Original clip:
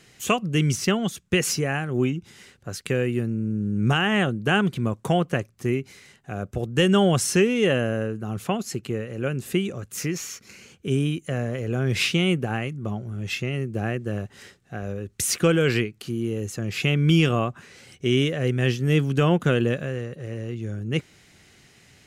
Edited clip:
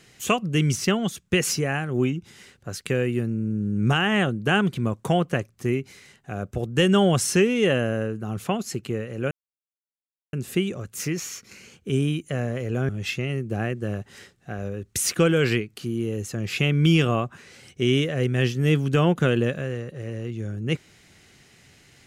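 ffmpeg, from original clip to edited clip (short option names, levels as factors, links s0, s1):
-filter_complex "[0:a]asplit=3[s0][s1][s2];[s0]atrim=end=9.31,asetpts=PTS-STARTPTS,afade=t=out:st=9.306:d=0.004:c=hsin,apad=pad_dur=1.02[s3];[s1]atrim=start=9.31:end=11.872,asetpts=PTS-STARTPTS,afade=t=in:d=0.004:c=hsin[s4];[s2]atrim=start=13.128[s5];[s3][s4]concat=n=2:v=0:a=1[s6];[s6][s5]acrossfade=d=0.004:c1=hsin:c2=hsin"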